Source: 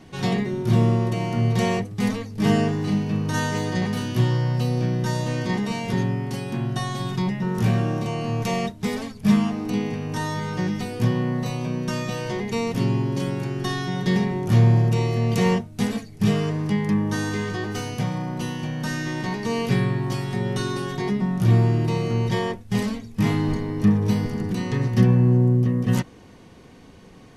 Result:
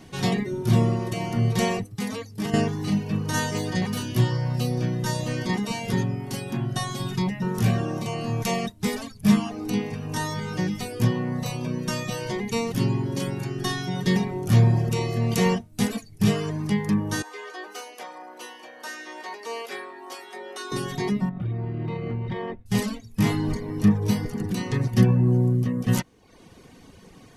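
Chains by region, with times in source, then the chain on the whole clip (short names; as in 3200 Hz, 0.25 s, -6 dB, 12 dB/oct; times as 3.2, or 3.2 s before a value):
1.95–2.54 HPF 130 Hz 6 dB/oct + compressor 12:1, threshold -23 dBFS
17.22–20.72 Bessel high-pass 600 Hz, order 6 + high shelf 2200 Hz -8.5 dB
21.29–22.66 compressor 16:1, threshold -22 dBFS + air absorption 470 m + small resonant body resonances 2100/3700 Hz, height 8 dB, ringing for 25 ms
whole clip: reverb removal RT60 0.71 s; high shelf 6000 Hz +8 dB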